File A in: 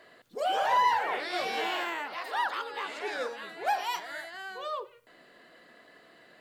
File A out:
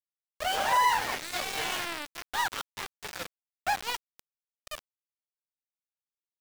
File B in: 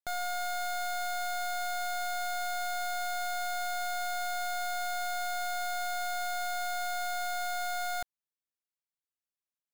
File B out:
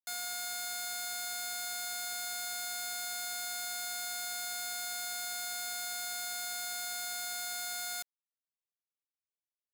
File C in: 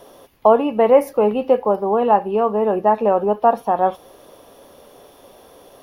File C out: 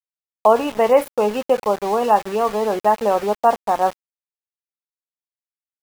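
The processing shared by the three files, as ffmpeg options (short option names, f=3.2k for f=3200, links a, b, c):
-af "afftdn=nr=26:nf=-43,tiltshelf=f=870:g=-4.5,aeval=exprs='val(0)*gte(abs(val(0)),0.0398)':c=same"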